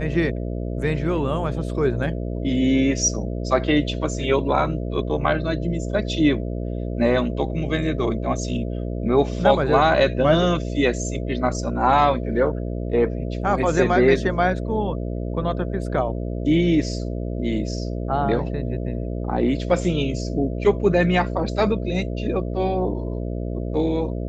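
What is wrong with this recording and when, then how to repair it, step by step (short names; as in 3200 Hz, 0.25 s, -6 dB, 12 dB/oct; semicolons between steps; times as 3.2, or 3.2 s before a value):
buzz 60 Hz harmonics 11 -27 dBFS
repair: de-hum 60 Hz, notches 11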